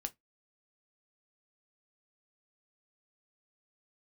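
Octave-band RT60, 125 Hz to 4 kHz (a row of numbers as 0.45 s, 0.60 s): 0.15 s, 0.20 s, 0.15 s, 0.15 s, 0.15 s, 0.10 s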